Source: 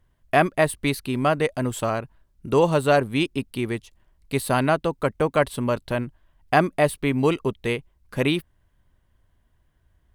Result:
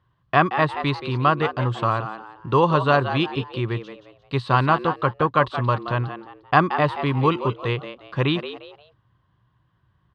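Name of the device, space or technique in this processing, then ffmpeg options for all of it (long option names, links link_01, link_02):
frequency-shifting delay pedal into a guitar cabinet: -filter_complex "[0:a]asplit=4[link_01][link_02][link_03][link_04];[link_02]adelay=176,afreqshift=100,volume=-10.5dB[link_05];[link_03]adelay=352,afreqshift=200,volume=-20.4dB[link_06];[link_04]adelay=528,afreqshift=300,volume=-30.3dB[link_07];[link_01][link_05][link_06][link_07]amix=inputs=4:normalize=0,highpass=100,equalizer=frequency=120:width_type=q:width=4:gain=7,equalizer=frequency=240:width_type=q:width=4:gain=-10,equalizer=frequency=440:width_type=q:width=4:gain=-4,equalizer=frequency=640:width_type=q:width=4:gain=-7,equalizer=frequency=1100:width_type=q:width=4:gain=9,equalizer=frequency=2200:width_type=q:width=4:gain=-7,lowpass=frequency=4300:width=0.5412,lowpass=frequency=4300:width=1.3066,volume=2.5dB"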